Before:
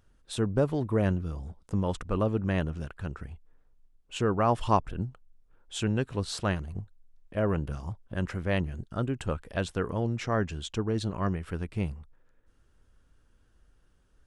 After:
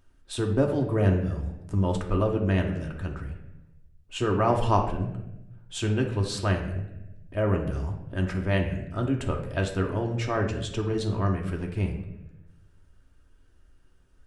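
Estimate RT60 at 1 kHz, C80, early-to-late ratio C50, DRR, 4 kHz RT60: 0.80 s, 9.5 dB, 7.0 dB, 1.0 dB, 0.60 s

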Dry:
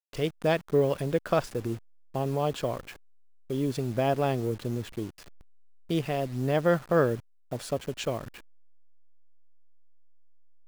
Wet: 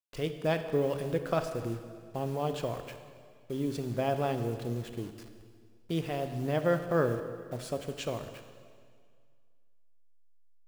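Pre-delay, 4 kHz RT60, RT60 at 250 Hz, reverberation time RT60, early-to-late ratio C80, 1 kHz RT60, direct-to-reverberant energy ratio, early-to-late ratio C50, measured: 4 ms, 1.8 s, 2.0 s, 2.0 s, 10.0 dB, 2.0 s, 7.5 dB, 9.0 dB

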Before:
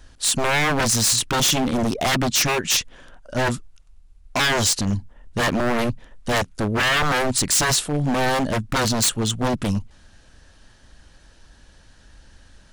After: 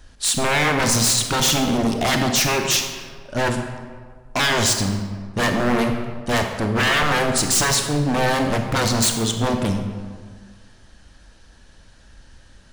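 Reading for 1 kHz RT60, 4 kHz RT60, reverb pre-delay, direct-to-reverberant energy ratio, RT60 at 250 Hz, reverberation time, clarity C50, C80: 1.6 s, 1.0 s, 29 ms, 4.5 dB, 1.8 s, 1.7 s, 5.5 dB, 7.5 dB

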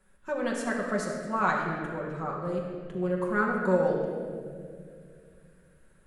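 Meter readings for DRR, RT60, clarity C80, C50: −3.0 dB, 2.2 s, 3.0 dB, 2.0 dB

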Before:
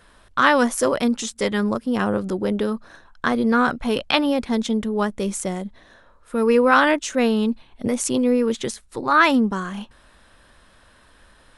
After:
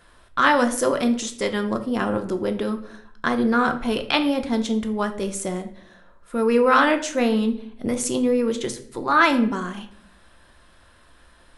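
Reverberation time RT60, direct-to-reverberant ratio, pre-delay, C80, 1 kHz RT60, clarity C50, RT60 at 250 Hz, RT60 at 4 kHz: 0.60 s, 6.0 dB, 3 ms, 15.5 dB, 0.50 s, 12.0 dB, 0.85 s, 0.45 s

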